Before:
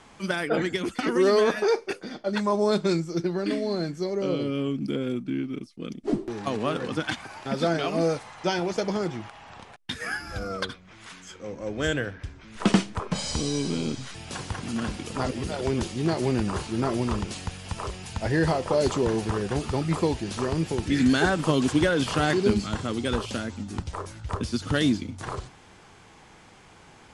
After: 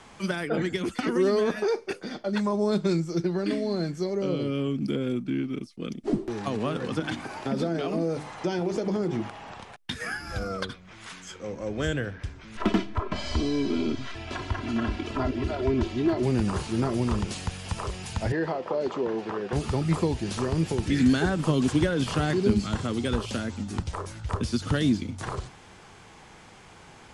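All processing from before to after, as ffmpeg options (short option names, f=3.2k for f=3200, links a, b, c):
-filter_complex "[0:a]asettb=1/sr,asplit=3[a][b][c];[a]atrim=end=6.994[d];[b]atrim=start=6.99:end=9.54,asetpts=PTS-STARTPTS,afade=t=in:d=0.004:c=qsin,afade=t=out:st=2.546:d=0.004:c=qsin,equalizer=f=310:t=o:w=2:g=8.5,bandreject=f=50:t=h:w=6,bandreject=f=100:t=h:w=6,bandreject=f=150:t=h:w=6,bandreject=f=200:t=h:w=6,bandreject=f=250:t=h:w=6,bandreject=f=300:t=h:w=6,bandreject=f=350:t=h:w=6,bandreject=f=400:t=h:w=6,acompressor=threshold=-24dB:ratio=3:attack=3.2:release=140:knee=1:detection=peak[e];[c]atrim=start=9.536[f];[d][e]acrossfade=d=0.004:c1=hsin:c2=qsin[g];[g][f]acrossfade=d=0.004:c1=qsin:c2=hsin,asettb=1/sr,asplit=3[h][i][j];[h]atrim=end=12.574[k];[i]atrim=start=12.57:end=16.23,asetpts=PTS-STARTPTS,afade=t=in:d=0.004:c=qsin,afade=t=out:st=3.656:d=0.004:c=qsin,lowpass=3.3k,aecho=1:1:3:0.84,atrim=end_sample=161406,asoftclip=type=hard:threshold=-14.5dB[l];[j]atrim=start=16.226[m];[k][l]acrossfade=d=0.004:c1=hsin:c2=qsin[n];[n][m]acrossfade=d=0.004:c1=qsin:c2=hsin,asettb=1/sr,asplit=3[o][p][q];[o]atrim=end=18.324[r];[p]atrim=start=18.32:end=19.53,asetpts=PTS-STARTPTS,afade=t=in:d=0.004:c=qsin,afade=t=out:st=1.206:d=0.004:c=qsin,highpass=320,lowpass=4.8k,highshelf=f=3.4k:g=-10.5[s];[q]atrim=start=19.526[t];[r][s]acrossfade=d=0.004:c1=hsin:c2=qsin[u];[u][t]acrossfade=d=0.004:c1=qsin:c2=hsin,equalizer=f=290:w=5.4:g=-2.5,acrossover=split=330[v][w];[w]acompressor=threshold=-35dB:ratio=2[x];[v][x]amix=inputs=2:normalize=0,volume=2dB"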